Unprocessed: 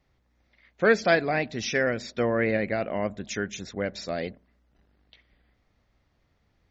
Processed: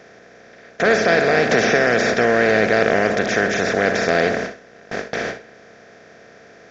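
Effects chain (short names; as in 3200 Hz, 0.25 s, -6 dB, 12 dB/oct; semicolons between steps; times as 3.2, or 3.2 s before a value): per-bin compression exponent 0.2; gate with hold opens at -11 dBFS; on a send: flutter echo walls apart 11.1 m, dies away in 0.31 s; 1.51–2.14 on the sum: three-band squash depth 100%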